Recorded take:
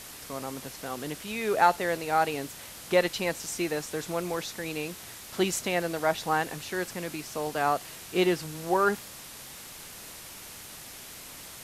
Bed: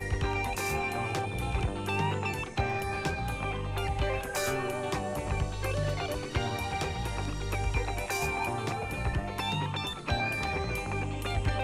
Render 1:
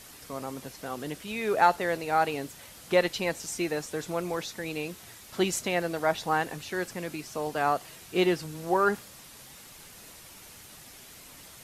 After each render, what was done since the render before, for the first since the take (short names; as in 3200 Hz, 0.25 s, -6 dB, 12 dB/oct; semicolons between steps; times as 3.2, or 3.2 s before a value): denoiser 6 dB, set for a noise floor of -45 dBFS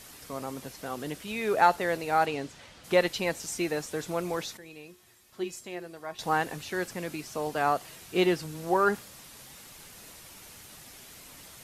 2.25–2.83 LPF 8400 Hz -> 4200 Hz; 4.57–6.19 resonator 360 Hz, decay 0.31 s, harmonics odd, mix 80%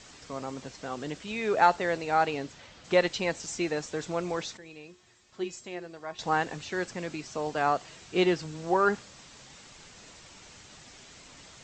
steep low-pass 7900 Hz 96 dB/oct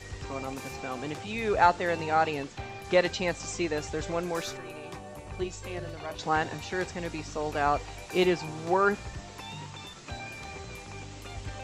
add bed -10 dB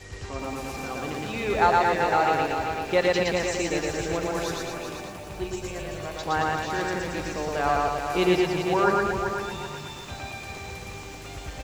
loudspeakers at several distances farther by 40 m -1 dB, 77 m -5 dB; lo-fi delay 0.385 s, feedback 35%, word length 8-bit, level -6.5 dB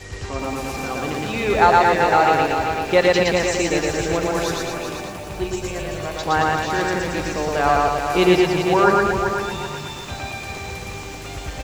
gain +6.5 dB; limiter -2 dBFS, peak gain reduction 1 dB